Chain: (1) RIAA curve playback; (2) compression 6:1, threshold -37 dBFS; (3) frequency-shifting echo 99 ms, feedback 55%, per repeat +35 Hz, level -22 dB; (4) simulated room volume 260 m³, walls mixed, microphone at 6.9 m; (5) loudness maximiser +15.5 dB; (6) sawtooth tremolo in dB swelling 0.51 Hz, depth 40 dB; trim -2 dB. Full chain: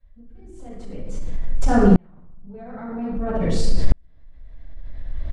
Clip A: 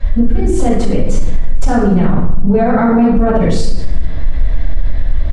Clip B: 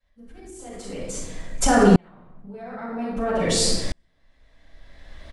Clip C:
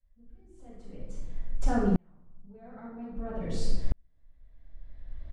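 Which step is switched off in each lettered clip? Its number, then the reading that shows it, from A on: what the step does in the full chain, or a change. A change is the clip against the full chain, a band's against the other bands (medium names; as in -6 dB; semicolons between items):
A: 6, momentary loudness spread change -13 LU; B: 1, 4 kHz band +9.5 dB; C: 5, loudness change -11.5 LU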